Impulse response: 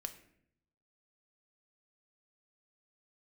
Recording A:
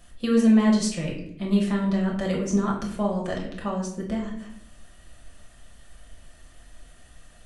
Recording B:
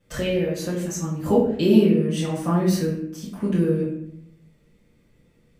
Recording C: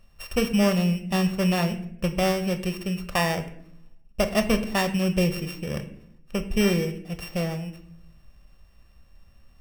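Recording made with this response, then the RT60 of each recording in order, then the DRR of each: C; 0.65 s, 0.65 s, 0.70 s; -2.5 dB, -11.0 dB, 7.5 dB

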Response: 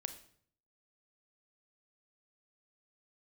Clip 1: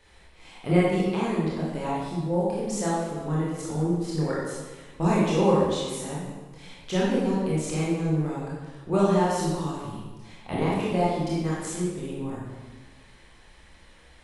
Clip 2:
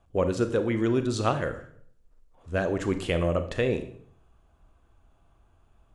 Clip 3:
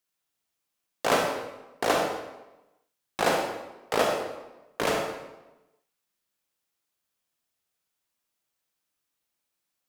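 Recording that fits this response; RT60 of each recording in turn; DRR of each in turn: 2; 1.4 s, 0.60 s, 1.0 s; -7.0 dB, 8.5 dB, 1.0 dB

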